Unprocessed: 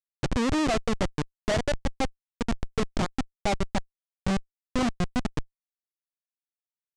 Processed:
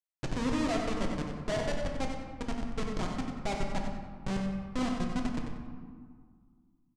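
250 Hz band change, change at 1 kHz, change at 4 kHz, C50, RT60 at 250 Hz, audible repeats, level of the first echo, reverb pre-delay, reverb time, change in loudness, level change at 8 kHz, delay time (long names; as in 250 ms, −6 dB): −4.0 dB, −5.5 dB, −6.5 dB, 2.0 dB, 2.6 s, 1, −8.0 dB, 3 ms, 1.8 s, −5.0 dB, −7.0 dB, 93 ms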